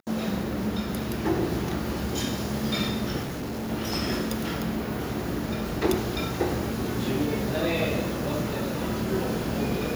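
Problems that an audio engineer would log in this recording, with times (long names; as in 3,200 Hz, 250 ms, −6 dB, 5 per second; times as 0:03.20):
0:03.22–0:03.71: clipping −29 dBFS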